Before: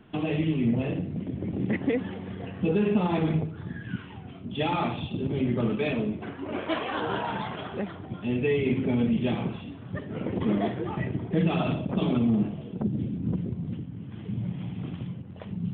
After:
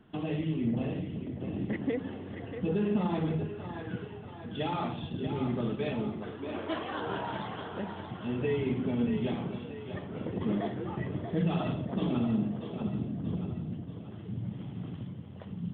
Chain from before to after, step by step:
parametric band 2,400 Hz −6.5 dB 0.28 octaves
echo with a time of its own for lows and highs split 320 Hz, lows 86 ms, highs 634 ms, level −8 dB
level −5.5 dB

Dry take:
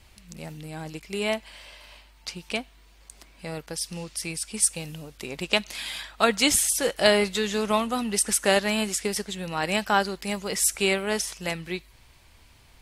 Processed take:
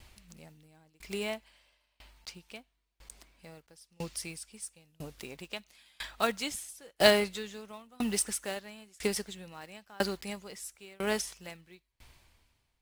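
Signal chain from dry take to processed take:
one scale factor per block 5 bits
tremolo with a ramp in dB decaying 1 Hz, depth 32 dB

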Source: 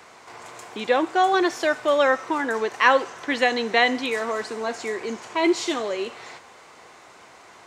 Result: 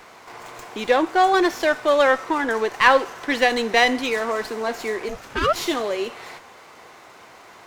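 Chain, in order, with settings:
0:05.08–0:05.54: ring modulation 190 Hz → 1,100 Hz
windowed peak hold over 3 samples
level +2.5 dB

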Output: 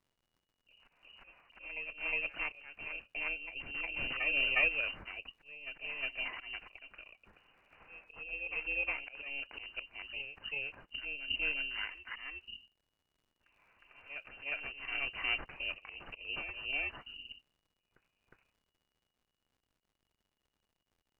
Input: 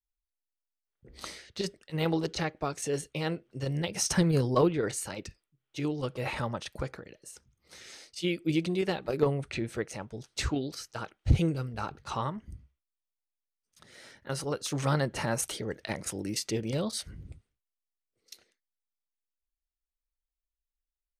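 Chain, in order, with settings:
samples in bit-reversed order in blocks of 16 samples
dynamic equaliser 110 Hz, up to +8 dB, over −53 dBFS, Q 5.4
voice inversion scrambler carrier 2,900 Hz
surface crackle 120 per second −58 dBFS
volume swells 243 ms
spectral tilt −2.5 dB per octave
backwards echo 360 ms −7 dB
level −2.5 dB

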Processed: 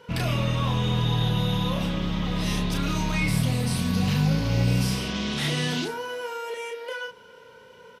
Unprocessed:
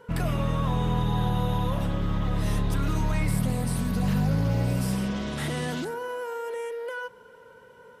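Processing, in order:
high-pass filter 51 Hz
flat-topped bell 3,700 Hz +8.5 dB
double-tracking delay 33 ms −4 dB

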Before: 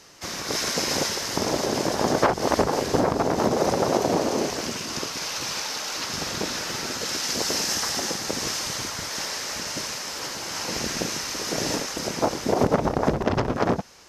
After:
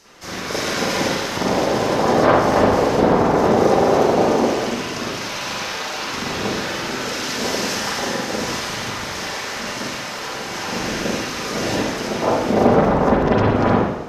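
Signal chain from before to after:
spring reverb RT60 1 s, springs 38/43/47 ms, chirp 25 ms, DRR −8.5 dB
level −2 dB

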